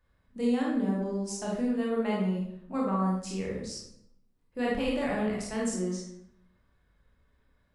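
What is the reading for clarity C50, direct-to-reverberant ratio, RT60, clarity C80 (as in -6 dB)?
1.0 dB, -4.5 dB, 0.75 s, 5.0 dB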